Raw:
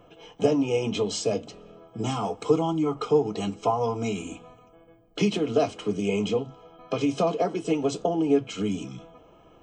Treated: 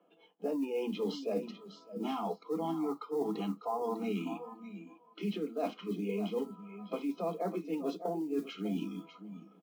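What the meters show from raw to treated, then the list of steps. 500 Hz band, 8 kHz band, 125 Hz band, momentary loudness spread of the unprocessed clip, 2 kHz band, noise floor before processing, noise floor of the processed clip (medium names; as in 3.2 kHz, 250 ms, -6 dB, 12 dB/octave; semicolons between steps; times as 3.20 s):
-10.5 dB, under -20 dB, -13.0 dB, 11 LU, -11.5 dB, -55 dBFS, -64 dBFS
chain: low-pass 4.6 kHz 24 dB/octave; modulation noise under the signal 24 dB; steep high-pass 170 Hz 96 dB/octave; treble shelf 2.1 kHz -7.5 dB; reverse; compression 10:1, threshold -31 dBFS, peak gain reduction 16 dB; reverse; feedback delay 599 ms, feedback 26%, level -10 dB; spectral noise reduction 14 dB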